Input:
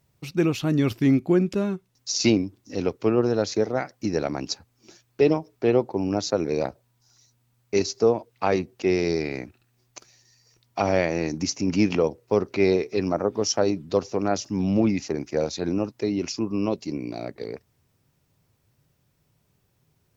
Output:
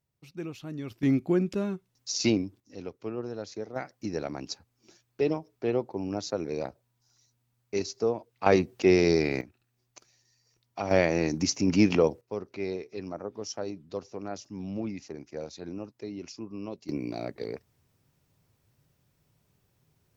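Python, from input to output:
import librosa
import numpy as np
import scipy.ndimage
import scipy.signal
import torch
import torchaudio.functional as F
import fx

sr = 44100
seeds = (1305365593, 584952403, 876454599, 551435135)

y = fx.gain(x, sr, db=fx.steps((0.0, -15.5), (1.03, -5.0), (2.6, -14.0), (3.76, -7.5), (8.46, 1.5), (9.41, -9.0), (10.91, -0.5), (12.21, -13.0), (16.89, -2.0)))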